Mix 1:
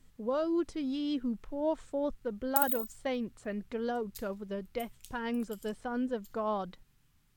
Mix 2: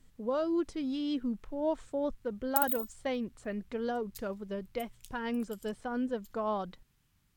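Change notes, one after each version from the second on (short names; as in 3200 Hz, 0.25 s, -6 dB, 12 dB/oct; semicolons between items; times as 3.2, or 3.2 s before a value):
reverb: off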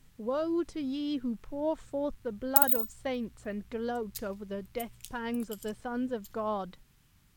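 background +7.5 dB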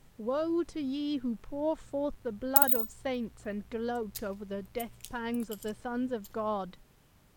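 background: add bell 550 Hz +14 dB 1.6 oct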